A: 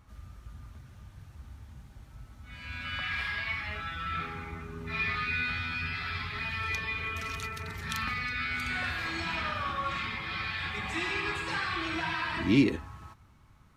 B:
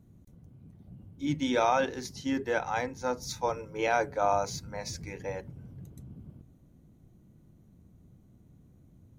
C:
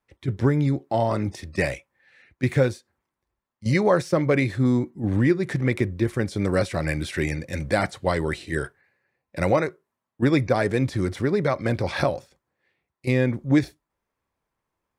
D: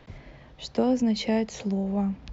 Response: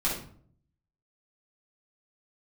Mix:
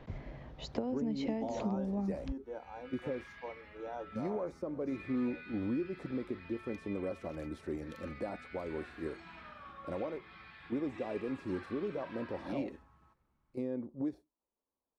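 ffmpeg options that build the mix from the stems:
-filter_complex "[0:a]equalizer=frequency=96:width=2.4:gain=-14,volume=-14.5dB[link_01];[1:a]volume=-19dB[link_02];[2:a]adelay=500,volume=-15dB[link_03];[3:a]acompressor=threshold=-33dB:ratio=12,volume=1dB,asplit=2[link_04][link_05];[link_05]apad=whole_len=682993[link_06];[link_03][link_06]sidechaincompress=threshold=-38dB:ratio=8:attack=16:release=408[link_07];[link_02][link_07]amix=inputs=2:normalize=0,equalizer=frequency=125:width_type=o:width=1:gain=-10,equalizer=frequency=250:width_type=o:width=1:gain=8,equalizer=frequency=500:width_type=o:width=1:gain=5,equalizer=frequency=1000:width_type=o:width=1:gain=5,equalizer=frequency=2000:width_type=o:width=1:gain=-10,alimiter=level_in=3.5dB:limit=-24dB:level=0:latency=1:release=270,volume=-3.5dB,volume=0dB[link_08];[link_01][link_04][link_08]amix=inputs=3:normalize=0,highshelf=frequency=2200:gain=-11.5"

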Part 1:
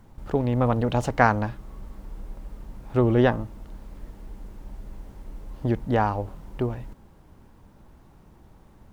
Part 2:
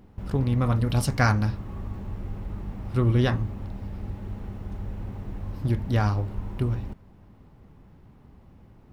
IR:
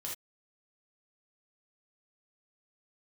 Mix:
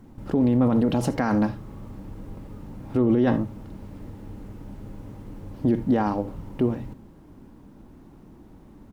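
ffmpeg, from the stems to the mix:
-filter_complex "[0:a]equalizer=frequency=270:width_type=o:width=1.2:gain=12.5,volume=-2.5dB,asplit=2[link_01][link_02];[link_02]volume=-11.5dB[link_03];[1:a]volume=-1,adelay=3.6,volume=-9dB,asplit=2[link_04][link_05];[link_05]volume=-9dB[link_06];[2:a]atrim=start_sample=2205[link_07];[link_03][link_06]amix=inputs=2:normalize=0[link_08];[link_08][link_07]afir=irnorm=-1:irlink=0[link_09];[link_01][link_04][link_09]amix=inputs=3:normalize=0,alimiter=limit=-12.5dB:level=0:latency=1:release=27"

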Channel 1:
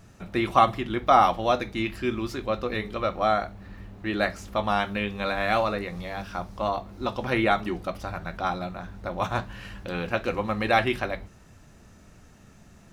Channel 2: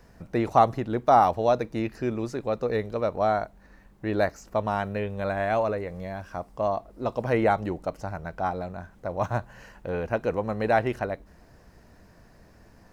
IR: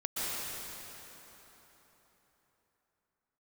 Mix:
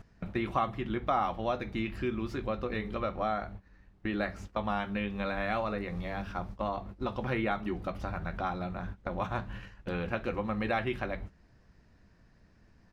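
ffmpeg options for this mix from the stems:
-filter_complex "[0:a]bass=frequency=250:gain=4,treble=frequency=4000:gain=-10,volume=1.5dB[link_01];[1:a]lowpass=4900,equalizer=frequency=650:width=0.73:gain=-7.5,adelay=17,volume=-6.5dB,asplit=2[link_02][link_03];[link_03]apad=whole_len=570200[link_04];[link_01][link_04]sidechaingate=range=-27dB:threshold=-53dB:ratio=16:detection=peak[link_05];[link_05][link_02]amix=inputs=2:normalize=0,acompressor=threshold=-36dB:ratio=2"

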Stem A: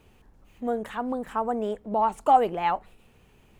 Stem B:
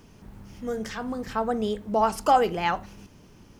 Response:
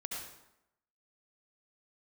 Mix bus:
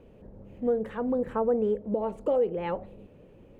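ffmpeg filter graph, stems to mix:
-filter_complex "[0:a]bass=frequency=250:gain=3,treble=frequency=4000:gain=-10,volume=-5dB[link_01];[1:a]crystalizer=i=3.5:c=0,lowpass=frequency=530:width_type=q:width=5.8,volume=-5dB[link_02];[link_01][link_02]amix=inputs=2:normalize=0,alimiter=limit=-17.5dB:level=0:latency=1:release=392"

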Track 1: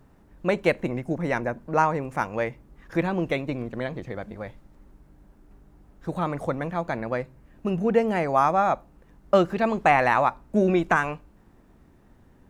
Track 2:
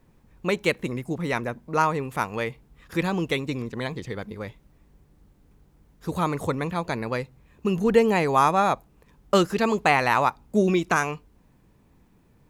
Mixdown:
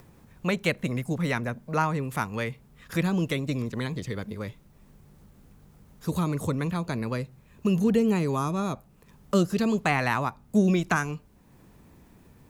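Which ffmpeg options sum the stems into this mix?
ffmpeg -i stem1.wav -i stem2.wav -filter_complex "[0:a]volume=-8.5dB[link_01];[1:a]highpass=frequency=53:width=0.5412,highpass=frequency=53:width=1.3066,highshelf=frequency=5200:gain=5.5,acrossover=split=390[link_02][link_03];[link_03]acompressor=threshold=-33dB:ratio=2[link_04];[link_02][link_04]amix=inputs=2:normalize=0,volume=0.5dB[link_05];[link_01][link_05]amix=inputs=2:normalize=0,acompressor=mode=upward:threshold=-47dB:ratio=2.5" out.wav

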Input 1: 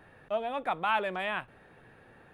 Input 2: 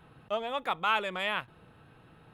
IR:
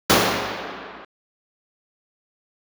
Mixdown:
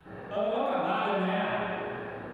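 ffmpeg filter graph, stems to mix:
-filter_complex "[0:a]acrossover=split=190|3000[link_01][link_02][link_03];[link_02]acompressor=threshold=-37dB:ratio=10[link_04];[link_01][link_04][link_03]amix=inputs=3:normalize=0,volume=-13.5dB,asplit=3[link_05][link_06][link_07];[link_06]volume=-3.5dB[link_08];[1:a]adelay=5.9,volume=0dB[link_09];[link_07]apad=whole_len=103409[link_10];[link_09][link_10]sidechaincompress=threshold=-54dB:ratio=8:attack=9.2:release=755[link_11];[2:a]atrim=start_sample=2205[link_12];[link_08][link_12]afir=irnorm=-1:irlink=0[link_13];[link_05][link_11][link_13]amix=inputs=3:normalize=0,acompressor=threshold=-25dB:ratio=6"

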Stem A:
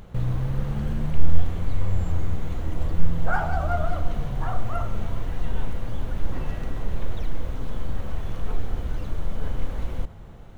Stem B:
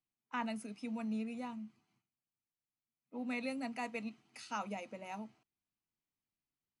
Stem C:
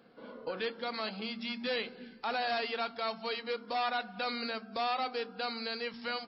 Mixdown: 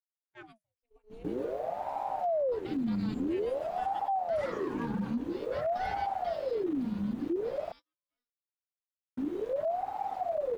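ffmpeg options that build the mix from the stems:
ffmpeg -i stem1.wav -i stem2.wav -i stem3.wav -filter_complex "[0:a]acompressor=threshold=-18dB:ratio=3,asoftclip=type=hard:threshold=-18dB,adelay=1100,volume=-7.5dB,asplit=3[link_01][link_02][link_03];[link_01]atrim=end=7.72,asetpts=PTS-STARTPTS,afade=type=out:start_time=7.716:duration=0.004:curve=hsin[link_04];[link_02]atrim=start=7.72:end=9.17,asetpts=PTS-STARTPTS,volume=0[link_05];[link_03]atrim=start=9.17,asetpts=PTS-STARTPTS,afade=type=in:duration=0.004:curve=hsin[link_06];[link_04][link_05][link_06]concat=n=3:v=0:a=1[link_07];[1:a]bandreject=frequency=60:width_type=h:width=6,bandreject=frequency=120:width_type=h:width=6,bandreject=frequency=180:width_type=h:width=6,bandreject=frequency=240:width_type=h:width=6,volume=-7dB,asplit=2[link_08][link_09];[2:a]aeval=exprs='sgn(val(0))*max(abs(val(0))-0.00178,0)':channel_layout=same,adelay=2050,volume=-8.5dB,afade=type=out:start_time=5.98:duration=0.8:silence=0.251189[link_10];[link_09]apad=whole_len=366924[link_11];[link_10][link_11]sidechaincompress=threshold=-59dB:ratio=8:attack=5.3:release=334[link_12];[link_07][link_08][link_12]amix=inputs=3:normalize=0,agate=range=-34dB:threshold=-44dB:ratio=16:detection=peak,aeval=exprs='val(0)*sin(2*PI*500*n/s+500*0.6/0.5*sin(2*PI*0.5*n/s))':channel_layout=same" out.wav

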